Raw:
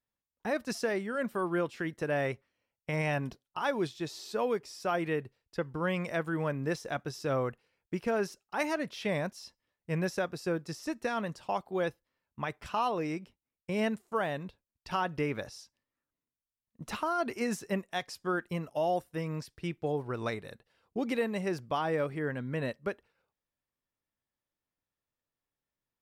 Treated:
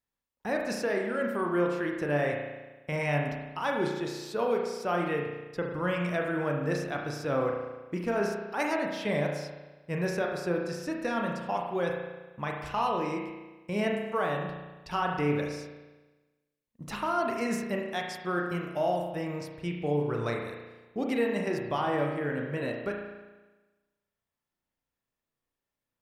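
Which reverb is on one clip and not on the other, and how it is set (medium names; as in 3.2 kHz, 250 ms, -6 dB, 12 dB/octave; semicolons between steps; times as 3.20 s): spring tank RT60 1.2 s, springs 34 ms, chirp 70 ms, DRR 0.5 dB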